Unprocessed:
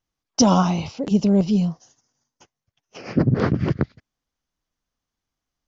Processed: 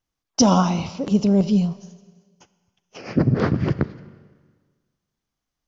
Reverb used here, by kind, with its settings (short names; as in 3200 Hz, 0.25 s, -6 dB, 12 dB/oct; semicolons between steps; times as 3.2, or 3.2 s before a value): Schroeder reverb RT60 1.5 s, combs from 27 ms, DRR 14.5 dB